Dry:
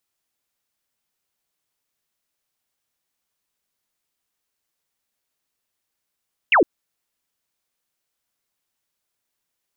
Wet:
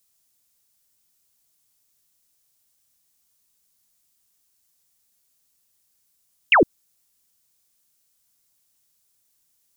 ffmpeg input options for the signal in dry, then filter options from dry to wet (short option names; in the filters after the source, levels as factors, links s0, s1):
-f lavfi -i "aevalsrc='0.282*clip(t/0.002,0,1)*clip((0.11-t)/0.002,0,1)*sin(2*PI*3000*0.11/log(280/3000)*(exp(log(280/3000)*t/0.11)-1))':d=0.11:s=44100"
-af "bass=f=250:g=8,treble=f=4000:g=13"